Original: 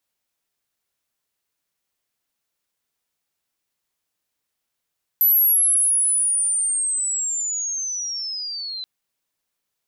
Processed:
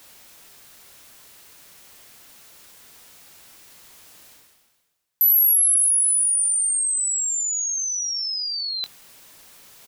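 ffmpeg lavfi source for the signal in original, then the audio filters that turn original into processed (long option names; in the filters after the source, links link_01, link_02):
-f lavfi -i "aevalsrc='pow(10,(-12.5-15.5*t/3.63)/20)*sin(2*PI*(12000*t-8000*t*t/(2*3.63)))':duration=3.63:sample_rate=44100"
-filter_complex "[0:a]areverse,acompressor=mode=upward:threshold=-24dB:ratio=2.5,areverse,asplit=2[link_01][link_02];[link_02]adelay=22,volume=-13.5dB[link_03];[link_01][link_03]amix=inputs=2:normalize=0"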